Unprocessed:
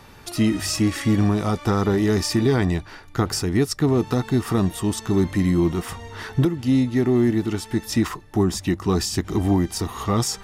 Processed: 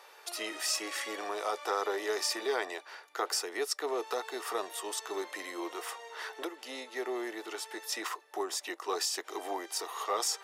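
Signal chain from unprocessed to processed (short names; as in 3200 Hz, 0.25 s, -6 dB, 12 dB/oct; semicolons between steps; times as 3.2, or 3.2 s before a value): steep high-pass 440 Hz 36 dB/oct; gain -5.5 dB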